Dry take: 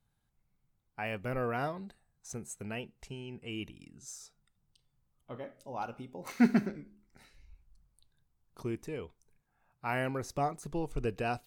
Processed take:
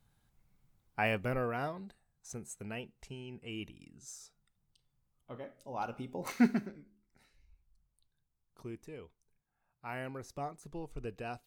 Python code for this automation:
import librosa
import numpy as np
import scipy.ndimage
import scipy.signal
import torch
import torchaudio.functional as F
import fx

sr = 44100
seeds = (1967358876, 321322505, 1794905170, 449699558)

y = fx.gain(x, sr, db=fx.line((1.05, 6.0), (1.51, -2.5), (5.57, -2.5), (6.23, 5.0), (6.62, -8.0)))